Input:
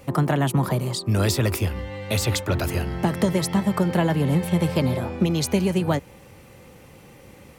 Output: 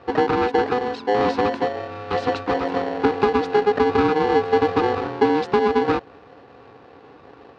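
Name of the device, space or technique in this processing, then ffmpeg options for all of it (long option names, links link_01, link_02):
ring modulator pedal into a guitar cabinet: -af "aeval=exprs='val(0)*sgn(sin(2*PI*620*n/s))':channel_layout=same,highpass=76,equalizer=frequency=280:width_type=q:width=4:gain=9,equalizer=frequency=430:width_type=q:width=4:gain=6,equalizer=frequency=2100:width_type=q:width=4:gain=-7,equalizer=frequency=3200:width_type=q:width=4:gain=-9,lowpass=frequency=3600:width=0.5412,lowpass=frequency=3600:width=1.3066"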